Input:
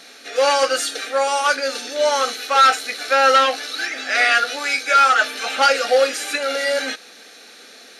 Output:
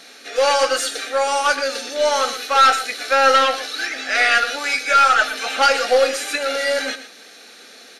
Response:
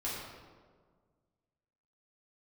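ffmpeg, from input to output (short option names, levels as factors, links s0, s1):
-af "aeval=exprs='0.75*(cos(1*acos(clip(val(0)/0.75,-1,1)))-cos(1*PI/2))+0.0237*(cos(4*acos(clip(val(0)/0.75,-1,1)))-cos(4*PI/2))':c=same,aecho=1:1:118:0.237"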